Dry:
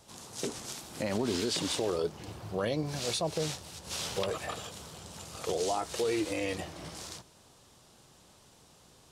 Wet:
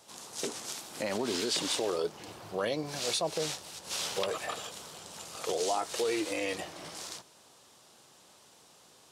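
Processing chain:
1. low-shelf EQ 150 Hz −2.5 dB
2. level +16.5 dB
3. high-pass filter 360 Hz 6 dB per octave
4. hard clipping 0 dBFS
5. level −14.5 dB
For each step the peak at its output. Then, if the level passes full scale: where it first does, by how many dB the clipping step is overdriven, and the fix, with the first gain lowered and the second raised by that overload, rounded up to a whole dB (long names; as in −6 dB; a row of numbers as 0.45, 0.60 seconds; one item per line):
−19.5, −3.0, −3.0, −3.0, −17.5 dBFS
no step passes full scale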